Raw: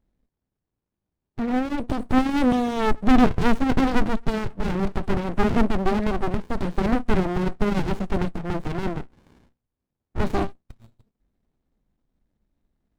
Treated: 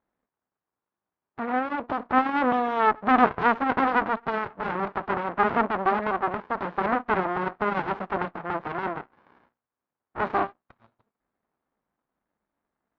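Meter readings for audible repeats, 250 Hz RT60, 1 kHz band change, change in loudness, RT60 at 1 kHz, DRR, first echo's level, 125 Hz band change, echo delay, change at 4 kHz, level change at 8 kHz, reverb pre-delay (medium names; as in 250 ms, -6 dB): no echo, no reverb, +5.0 dB, -1.5 dB, no reverb, no reverb, no echo, -12.5 dB, no echo, -6.5 dB, no reading, no reverb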